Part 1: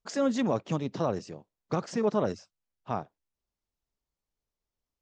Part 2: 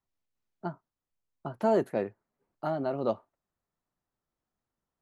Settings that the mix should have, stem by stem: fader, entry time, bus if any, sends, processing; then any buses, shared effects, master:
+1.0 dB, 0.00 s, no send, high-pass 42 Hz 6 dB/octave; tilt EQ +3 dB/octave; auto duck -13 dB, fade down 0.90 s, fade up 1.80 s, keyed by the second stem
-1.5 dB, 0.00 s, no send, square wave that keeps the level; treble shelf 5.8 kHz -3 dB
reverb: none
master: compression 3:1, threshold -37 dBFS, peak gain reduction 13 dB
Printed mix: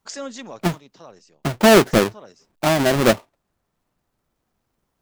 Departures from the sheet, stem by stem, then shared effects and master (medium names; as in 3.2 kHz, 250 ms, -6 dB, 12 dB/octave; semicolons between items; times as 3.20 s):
stem 2 -1.5 dB -> +10.0 dB; master: missing compression 3:1, threshold -37 dBFS, peak gain reduction 13 dB